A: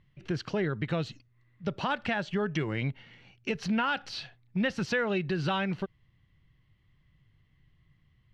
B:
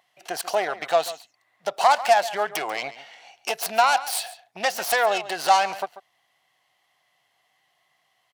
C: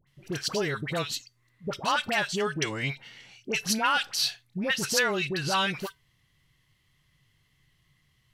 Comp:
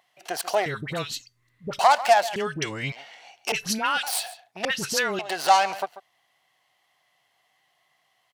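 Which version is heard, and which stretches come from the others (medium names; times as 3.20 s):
B
0.66–1.79 s: from C
2.36–2.92 s: from C
3.52–4.03 s: from C
4.65–5.19 s: from C
not used: A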